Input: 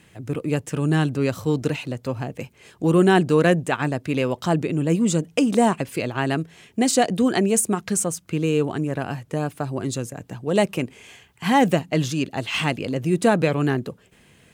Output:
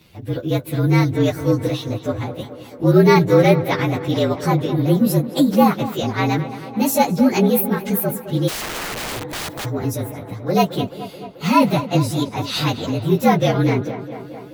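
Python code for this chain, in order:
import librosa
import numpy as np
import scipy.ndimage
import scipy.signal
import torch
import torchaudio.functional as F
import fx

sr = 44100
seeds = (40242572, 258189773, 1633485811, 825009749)

y = fx.partial_stretch(x, sr, pct=114)
y = fx.echo_tape(y, sr, ms=217, feedback_pct=78, wet_db=-12.0, lp_hz=2900.0, drive_db=8.0, wow_cents=17)
y = fx.overflow_wrap(y, sr, gain_db=28.0, at=(8.47, 9.64), fade=0.02)
y = y * 10.0 ** (5.5 / 20.0)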